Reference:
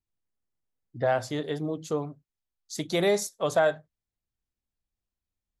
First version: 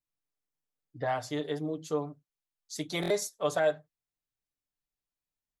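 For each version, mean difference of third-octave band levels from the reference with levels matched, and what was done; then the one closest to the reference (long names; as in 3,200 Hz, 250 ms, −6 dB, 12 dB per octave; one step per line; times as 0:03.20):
2.0 dB: low-shelf EQ 170 Hz −8 dB
comb filter 6.8 ms, depth 68%
buffer that repeats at 0:03.01, samples 1,024, times 3
level −4.5 dB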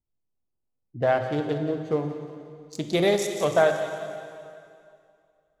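6.0 dB: adaptive Wiener filter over 25 samples
on a send: delay with a high-pass on its return 179 ms, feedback 49%, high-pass 2,600 Hz, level −8 dB
on the sum: dense smooth reverb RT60 2.4 s, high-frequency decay 0.9×, DRR 5.5 dB
level +3 dB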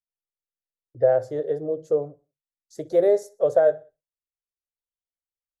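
9.0 dB: noise gate −56 dBFS, range −19 dB
drawn EQ curve 140 Hz 0 dB, 200 Hz −13 dB, 520 Hz +14 dB, 1,000 Hz −10 dB, 1,700 Hz −4 dB, 2,400 Hz −17 dB, 3,600 Hz −17 dB, 5,500 Hz −11 dB
repeating echo 62 ms, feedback 45%, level −23 dB
level −2 dB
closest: first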